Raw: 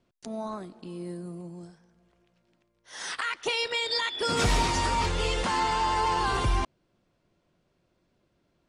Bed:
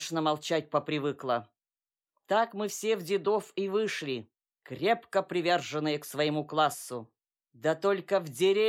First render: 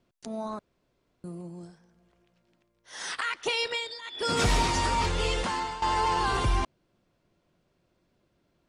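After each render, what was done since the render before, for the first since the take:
0:00.59–0:01.24: fill with room tone
0:03.69–0:04.29: duck −15 dB, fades 0.27 s
0:05.35–0:05.82: fade out, to −14 dB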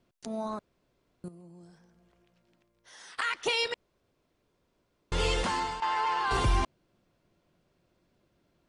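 0:01.28–0:03.18: downward compressor 3 to 1, threshold −52 dBFS
0:03.74–0:05.12: fill with room tone
0:05.80–0:06.31: resonant band-pass 1,600 Hz, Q 0.79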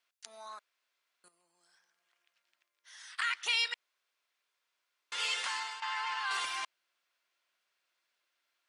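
Chebyshev high-pass filter 1,700 Hz, order 2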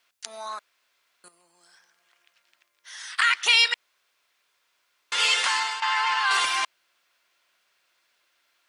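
level +12 dB

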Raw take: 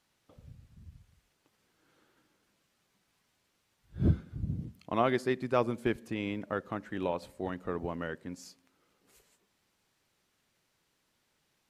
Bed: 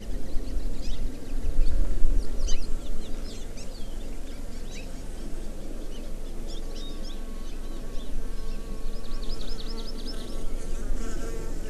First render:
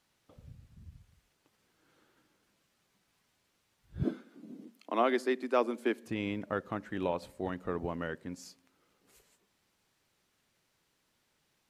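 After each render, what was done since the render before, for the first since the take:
0:04.03–0:06.06: Butterworth high-pass 230 Hz 48 dB per octave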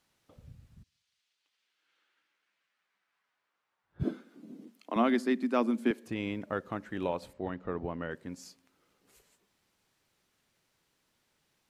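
0:00.82–0:03.99: resonant band-pass 4,700 Hz → 1,000 Hz, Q 1.3
0:04.96–0:05.91: low shelf with overshoot 280 Hz +11.5 dB, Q 1.5
0:07.33–0:08.11: high-frequency loss of the air 170 metres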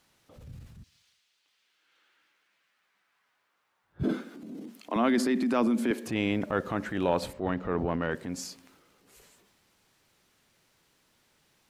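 in parallel at 0 dB: compressor whose output falls as the input rises −30 dBFS, ratio −0.5
on the sum: transient designer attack −5 dB, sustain +6 dB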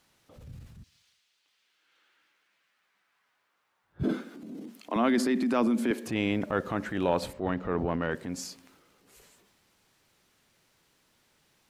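no processing that can be heard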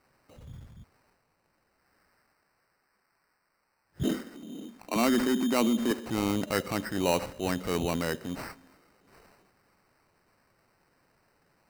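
decimation without filtering 13×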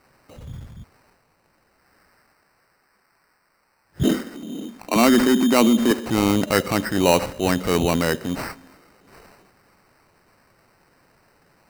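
level +9.5 dB

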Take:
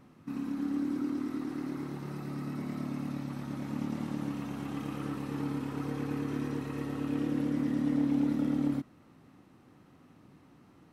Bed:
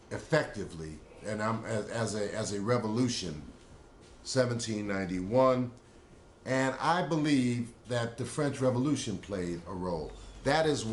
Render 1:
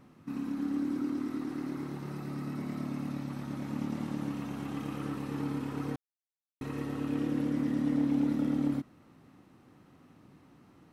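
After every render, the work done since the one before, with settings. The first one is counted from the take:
0:05.96–0:06.61: silence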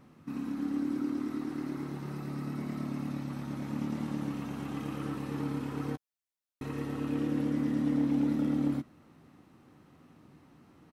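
double-tracking delay 13 ms −13 dB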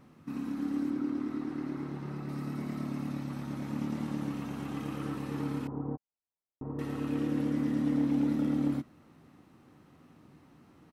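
0:00.90–0:02.29: low-pass filter 3,400 Hz 6 dB per octave
0:05.67–0:06.79: Chebyshev low-pass filter 930 Hz, order 3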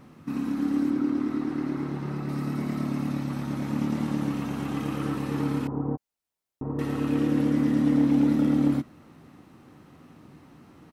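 level +7 dB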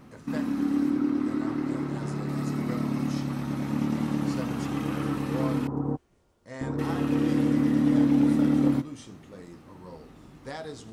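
mix in bed −11 dB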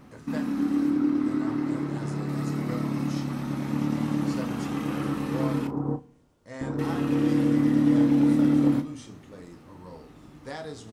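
double-tracking delay 34 ms −11 dB
feedback delay network reverb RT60 0.6 s, low-frequency decay 1.4×, high-frequency decay 0.7×, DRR 16 dB

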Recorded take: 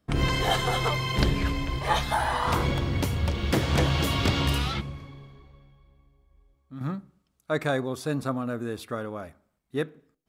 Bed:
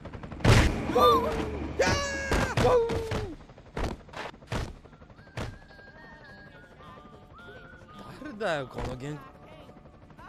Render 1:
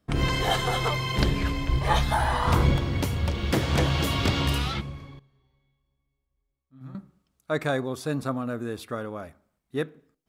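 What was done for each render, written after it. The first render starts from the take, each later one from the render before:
0:01.69–0:02.77: low-shelf EQ 220 Hz +8 dB
0:05.19–0:06.95: tuned comb filter 130 Hz, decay 1.1 s, mix 90%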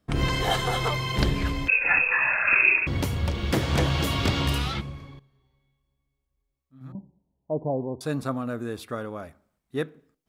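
0:01.68–0:02.87: voice inversion scrambler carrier 2,600 Hz
0:06.92–0:08.01: Chebyshev low-pass filter 1,000 Hz, order 8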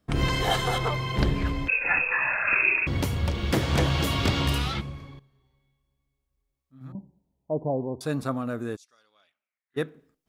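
0:00.78–0:02.78: high-shelf EQ 3,000 Hz −8 dB
0:08.75–0:09.76: resonant band-pass 6,900 Hz → 1,600 Hz, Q 5.8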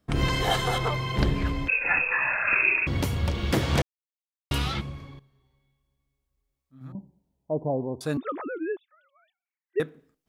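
0:03.82–0:04.51: silence
0:08.17–0:09.80: three sine waves on the formant tracks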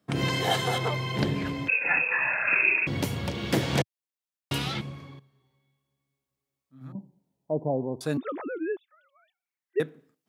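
high-pass filter 110 Hz 24 dB per octave
dynamic equaliser 1,200 Hz, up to −5 dB, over −45 dBFS, Q 3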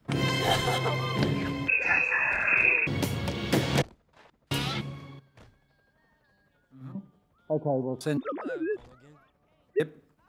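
mix in bed −18.5 dB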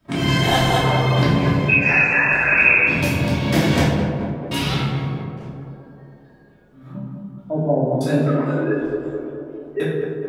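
on a send: tape delay 212 ms, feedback 78%, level −4 dB, low-pass 1,200 Hz
on the sum: rectangular room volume 330 cubic metres, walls mixed, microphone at 2.8 metres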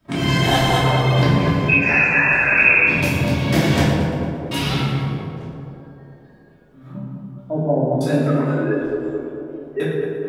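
echo with a time of its own for lows and highs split 500 Hz, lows 201 ms, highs 115 ms, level −11 dB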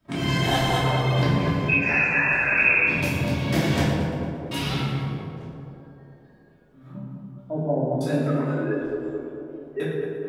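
level −5.5 dB

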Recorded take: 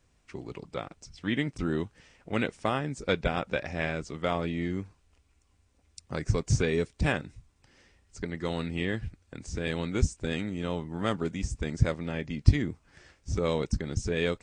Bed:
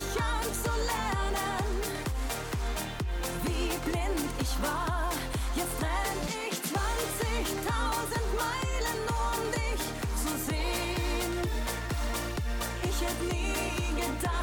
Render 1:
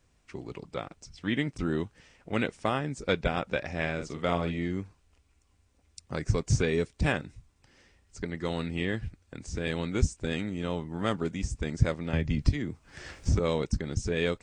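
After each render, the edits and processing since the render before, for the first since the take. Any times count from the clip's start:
0:03.94–0:04.58: double-tracking delay 46 ms −7 dB
0:12.13–0:13.40: multiband upward and downward compressor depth 100%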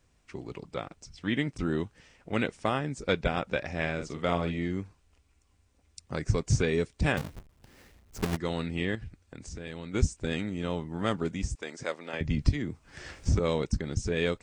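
0:07.17–0:08.37: each half-wave held at its own peak
0:08.95–0:09.94: downward compressor 3 to 1, threshold −38 dBFS
0:11.55–0:12.21: high-pass filter 460 Hz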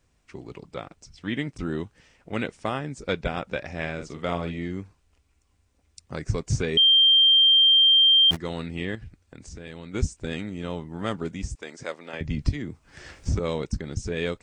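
0:06.77–0:08.31: beep over 3,170 Hz −13.5 dBFS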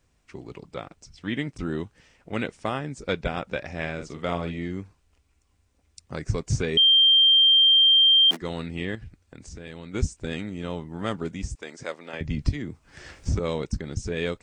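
0:07.66–0:08.42: Butterworth high-pass 210 Hz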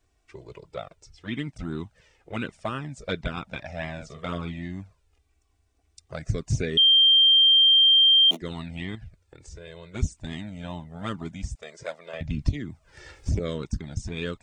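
flanger swept by the level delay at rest 2.7 ms, full sweep at −19 dBFS
hollow resonant body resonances 640/3,600 Hz, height 8 dB, ringing for 45 ms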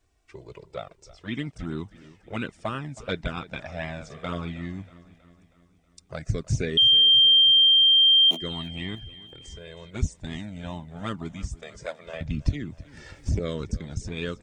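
repeating echo 319 ms, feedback 56%, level −19 dB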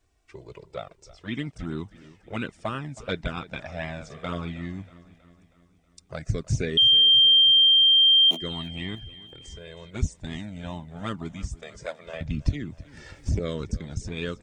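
no processing that can be heard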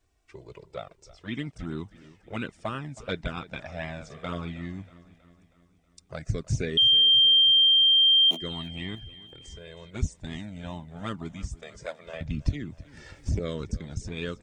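level −2 dB

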